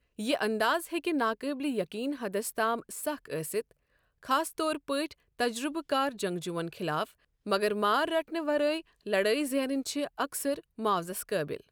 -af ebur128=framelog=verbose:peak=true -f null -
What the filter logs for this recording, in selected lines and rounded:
Integrated loudness:
  I:         -31.1 LUFS
  Threshold: -41.2 LUFS
Loudness range:
  LRA:         3.4 LU
  Threshold: -51.4 LUFS
  LRA low:   -33.0 LUFS
  LRA high:  -29.7 LUFS
True peak:
  Peak:      -13.1 dBFS